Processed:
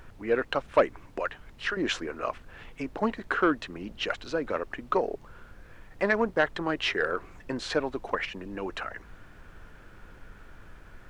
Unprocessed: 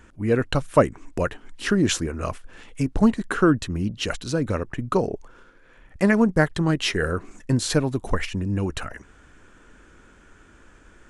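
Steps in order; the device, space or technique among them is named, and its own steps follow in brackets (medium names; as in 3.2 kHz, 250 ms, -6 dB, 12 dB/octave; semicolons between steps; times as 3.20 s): 1.19–1.77 s: high-pass 980 Hz 6 dB/octave; aircraft cabin announcement (band-pass 460–3000 Hz; saturation -11.5 dBFS, distortion -16 dB; brown noise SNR 16 dB)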